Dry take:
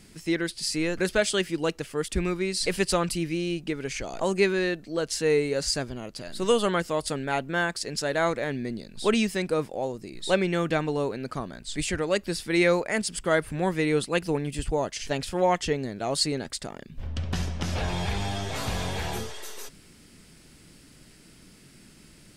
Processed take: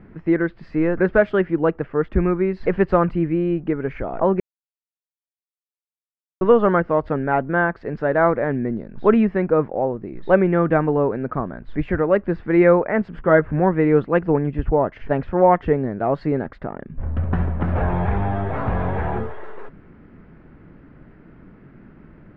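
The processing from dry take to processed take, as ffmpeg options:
-filter_complex "[0:a]asettb=1/sr,asplit=3[a][b][c];[a]atrim=end=13.124[d];[b]atrim=start=13.12:end=13.6,asetpts=PTS-STARTPTS,afade=t=in:d=0.004:c=qsin,afade=t=out:st=0.476:d=0.004:c=qsin,asplit=2[e][f];[f]adelay=13,volume=-8.5dB[g];[e][g]amix=inputs=2:normalize=0,atrim=end_sample=21168[h];[c]atrim=start=13.596[i];[d][h]acrossfade=d=0.004:c1=hsin:c2=qsin[j];[j][i]acrossfade=d=0.004:c1=qsin:c2=hsin,asplit=3[k][l][m];[k]atrim=end=4.4,asetpts=PTS-STARTPTS,afade=t=out:st=4.396:d=0.004:c=hsin[n];[l]atrim=start=4.4:end=6.41,asetpts=PTS-STARTPTS,volume=0[o];[m]atrim=start=6.41,asetpts=PTS-STARTPTS,afade=t=in:d=0.004:c=hsin[p];[n][o][p]concat=n=3:v=0:a=1,lowpass=f=1.6k:w=0.5412,lowpass=f=1.6k:w=1.3066,volume=8.5dB"

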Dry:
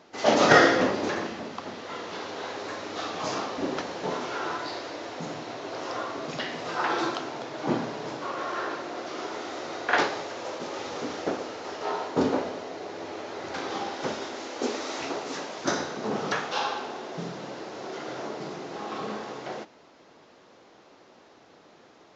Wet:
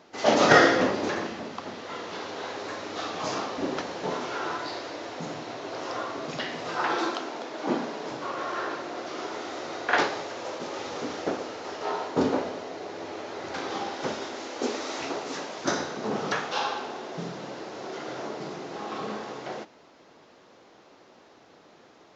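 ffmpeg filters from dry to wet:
-filter_complex "[0:a]asettb=1/sr,asplit=3[a][b][c];[a]atrim=end=6.964[d];[b]atrim=start=6.96:end=8.1,asetpts=PTS-STARTPTS,afade=t=in:d=0.004:c=qsin,afade=t=out:st=1.136:d=0.004:c=qsin,highpass=f=190:w=0.5412,highpass=f=190:w=1.3066[e];[c]atrim=start=8.096[f];[d][e]acrossfade=d=0.004:c1=hsin:c2=qsin[g];[g][f]acrossfade=d=0.004:c1=qsin:c2=hsin"

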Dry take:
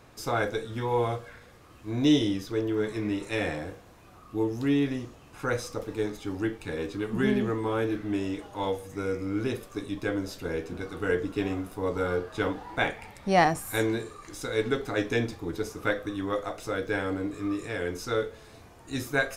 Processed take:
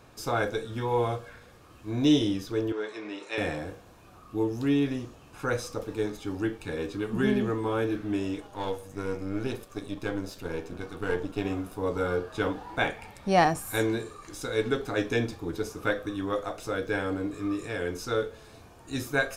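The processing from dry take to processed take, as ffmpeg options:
-filter_complex "[0:a]asettb=1/sr,asplit=3[a][b][c];[a]atrim=end=2.724[d];[b]atrim=start=2.72:end=3.38,asetpts=PTS-STARTPTS,afade=t=in:d=0.004:c=qsin,afade=t=out:st=0.656:d=0.004:c=qsin,highpass=500,lowpass=5.7k[e];[c]atrim=start=3.376[f];[d][e]acrossfade=d=0.004:c1=hsin:c2=qsin[g];[g][f]acrossfade=d=0.004:c1=qsin:c2=hsin,asettb=1/sr,asplit=3[h][i][j];[h]atrim=end=8.404[k];[i]atrim=start=8.4:end=11.45,asetpts=PTS-STARTPTS,afade=t=in:d=0.004:c=qsin,afade=t=out:st=3.046:d=0.004:c=qsin,aeval=exprs='if(lt(val(0),0),0.447*val(0),val(0))':c=same[l];[j]atrim=start=11.446[m];[k][l]acrossfade=d=0.004:c1=hsin:c2=qsin[n];[n][m]acrossfade=d=0.004:c1=qsin:c2=hsin,bandreject=f=2k:w=11"

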